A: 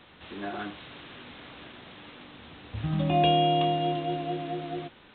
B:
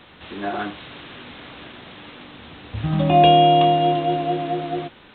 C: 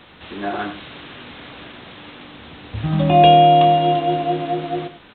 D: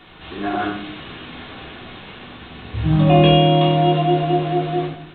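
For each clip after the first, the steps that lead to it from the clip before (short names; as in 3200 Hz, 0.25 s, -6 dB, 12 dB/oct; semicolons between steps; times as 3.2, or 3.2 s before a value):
dynamic EQ 730 Hz, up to +4 dB, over -38 dBFS, Q 0.72; gain +6.5 dB
echo 95 ms -12.5 dB; gain +1.5 dB
shoebox room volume 560 m³, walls furnished, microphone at 3.3 m; gain -3 dB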